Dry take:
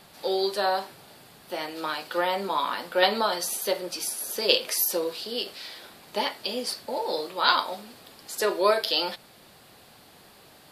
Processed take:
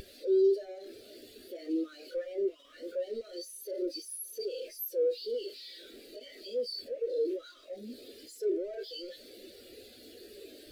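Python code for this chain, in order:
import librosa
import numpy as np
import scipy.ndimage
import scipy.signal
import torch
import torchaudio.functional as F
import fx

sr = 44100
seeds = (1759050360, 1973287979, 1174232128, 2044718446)

y = np.sign(x) * np.sqrt(np.mean(np.square(x)))
y = fx.fixed_phaser(y, sr, hz=380.0, stages=4)
y = fx.spectral_expand(y, sr, expansion=2.5)
y = y * librosa.db_to_amplitude(1.5)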